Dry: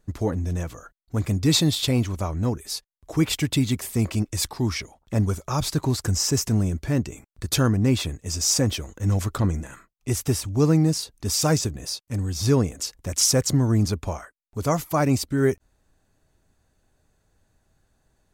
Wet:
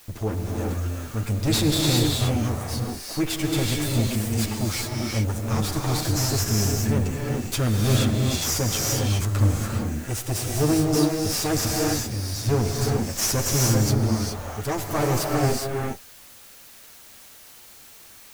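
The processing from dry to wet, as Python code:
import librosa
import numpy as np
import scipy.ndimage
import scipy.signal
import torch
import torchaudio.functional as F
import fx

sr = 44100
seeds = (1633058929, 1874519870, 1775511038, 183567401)

y = fx.lower_of_two(x, sr, delay_ms=9.1)
y = fx.transient(y, sr, attack_db=0, sustain_db=5)
y = fx.dmg_noise_colour(y, sr, seeds[0], colour='white', level_db=-48.0)
y = fx.rev_gated(y, sr, seeds[1], gate_ms=440, shape='rising', drr_db=-1.5)
y = y * 10.0 ** (-3.0 / 20.0)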